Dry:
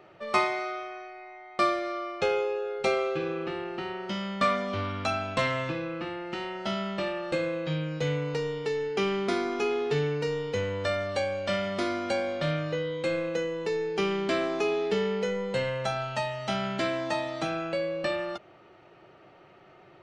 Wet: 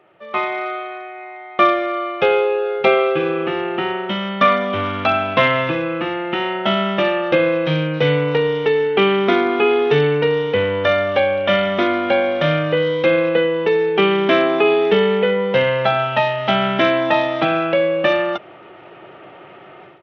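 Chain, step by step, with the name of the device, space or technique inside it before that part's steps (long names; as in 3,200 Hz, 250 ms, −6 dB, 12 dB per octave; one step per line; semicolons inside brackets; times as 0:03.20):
Bluetooth headset (high-pass filter 190 Hz 6 dB per octave; automatic gain control gain up to 15 dB; downsampling to 8,000 Hz; SBC 64 kbit/s 32,000 Hz)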